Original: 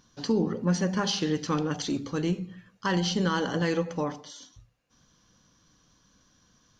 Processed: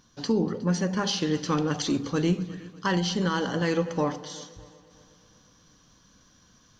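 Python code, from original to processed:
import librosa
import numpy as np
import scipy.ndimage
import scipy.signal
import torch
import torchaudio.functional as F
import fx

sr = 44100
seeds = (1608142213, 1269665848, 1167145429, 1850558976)

y = fx.rider(x, sr, range_db=3, speed_s=0.5)
y = fx.echo_heads(y, sr, ms=121, heads='second and third', feedback_pct=48, wet_db=-21.0)
y = y * librosa.db_to_amplitude(1.5)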